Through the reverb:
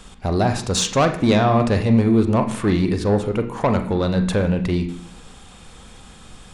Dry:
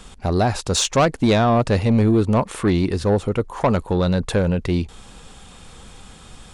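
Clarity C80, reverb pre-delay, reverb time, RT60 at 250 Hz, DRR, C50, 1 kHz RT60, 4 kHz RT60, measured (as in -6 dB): 13.5 dB, 37 ms, 0.70 s, 0.85 s, 6.0 dB, 11.0 dB, 0.70 s, 0.95 s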